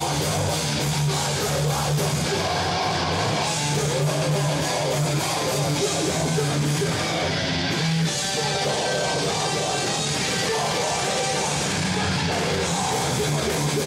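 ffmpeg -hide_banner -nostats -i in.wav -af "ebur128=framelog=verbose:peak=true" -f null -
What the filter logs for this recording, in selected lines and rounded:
Integrated loudness:
  I:         -22.6 LUFS
  Threshold: -32.6 LUFS
Loudness range:
  LRA:         0.2 LU
  Threshold: -42.6 LUFS
  LRA low:   -22.6 LUFS
  LRA high:  -22.5 LUFS
True peak:
  Peak:      -11.5 dBFS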